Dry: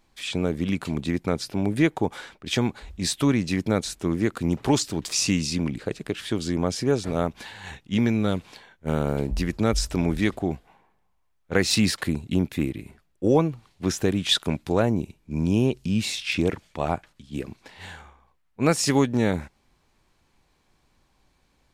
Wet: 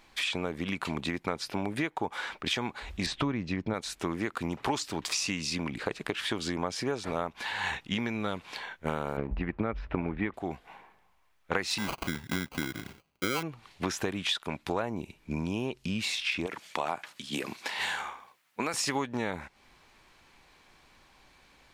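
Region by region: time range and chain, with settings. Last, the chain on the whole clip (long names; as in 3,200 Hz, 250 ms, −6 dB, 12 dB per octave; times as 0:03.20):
0:03.06–0:03.74: low-pass filter 6,100 Hz + spectral tilt −2.5 dB per octave
0:09.17–0:10.34: low-pass filter 2,500 Hz 24 dB per octave + low-shelf EQ 460 Hz +6 dB + transient designer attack +7 dB, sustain 0 dB
0:11.78–0:13.43: high-pass filter 83 Hz + sample-rate reduction 1,800 Hz + parametric band 710 Hz −6.5 dB 2.5 octaves
0:16.46–0:18.74: high-pass filter 170 Hz + high-shelf EQ 3,800 Hz +10 dB + downward compressor 3 to 1, threshold −29 dBFS
whole clip: drawn EQ curve 120 Hz 0 dB, 2,300 Hz +12 dB, 7,800 Hz +5 dB; downward compressor 6 to 1, threshold −30 dBFS; dynamic equaliser 980 Hz, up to +6 dB, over −49 dBFS, Q 1.6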